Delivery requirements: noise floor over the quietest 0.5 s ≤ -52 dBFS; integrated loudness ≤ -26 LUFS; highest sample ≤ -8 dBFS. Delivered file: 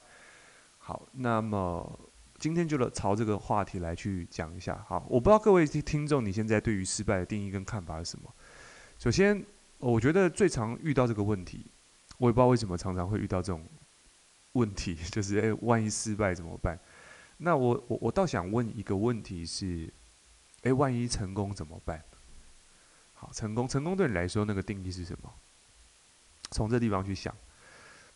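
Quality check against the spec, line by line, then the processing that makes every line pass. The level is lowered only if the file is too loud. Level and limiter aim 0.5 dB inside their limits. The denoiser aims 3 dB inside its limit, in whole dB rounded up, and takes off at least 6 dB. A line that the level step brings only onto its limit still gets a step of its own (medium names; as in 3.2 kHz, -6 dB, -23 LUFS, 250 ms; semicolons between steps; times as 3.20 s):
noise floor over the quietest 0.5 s -61 dBFS: pass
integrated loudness -30.5 LUFS: pass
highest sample -9.5 dBFS: pass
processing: none needed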